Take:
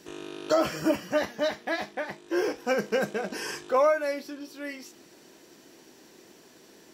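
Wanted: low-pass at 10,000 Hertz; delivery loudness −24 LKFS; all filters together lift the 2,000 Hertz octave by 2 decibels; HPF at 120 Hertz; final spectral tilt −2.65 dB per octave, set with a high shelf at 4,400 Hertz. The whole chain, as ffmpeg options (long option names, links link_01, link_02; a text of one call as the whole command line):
ffmpeg -i in.wav -af "highpass=120,lowpass=10000,equalizer=frequency=2000:width_type=o:gain=4,highshelf=frequency=4400:gain=-8,volume=4.5dB" out.wav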